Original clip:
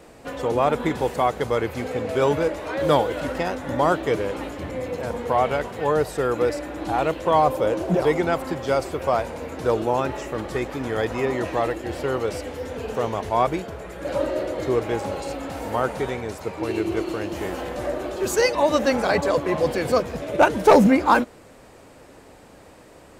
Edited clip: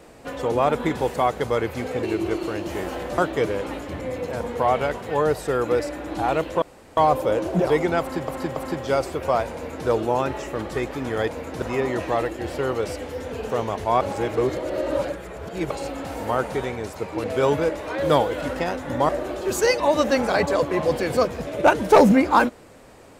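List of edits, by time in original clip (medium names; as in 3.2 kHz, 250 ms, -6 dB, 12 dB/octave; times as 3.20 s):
2.03–3.88 s: swap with 16.69–17.84 s
7.32 s: insert room tone 0.35 s
8.35–8.63 s: loop, 3 plays
9.33–9.67 s: copy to 11.07 s
13.46–15.16 s: reverse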